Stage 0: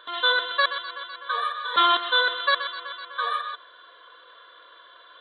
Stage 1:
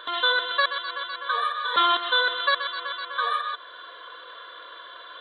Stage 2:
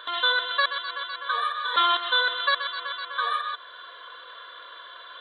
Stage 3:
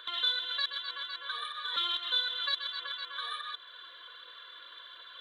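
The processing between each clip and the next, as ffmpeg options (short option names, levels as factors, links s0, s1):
-af "acompressor=threshold=0.00891:ratio=1.5,volume=2.37"
-af "lowshelf=f=380:g=-10.5"
-filter_complex "[0:a]equalizer=f=740:w=0.51:g=-14.5,acrossover=split=250|3000[s0][s1][s2];[s1]acompressor=threshold=0.0126:ratio=6[s3];[s0][s3][s2]amix=inputs=3:normalize=0,aphaser=in_gain=1:out_gain=1:delay=3.7:decay=0.31:speed=1.4:type=triangular"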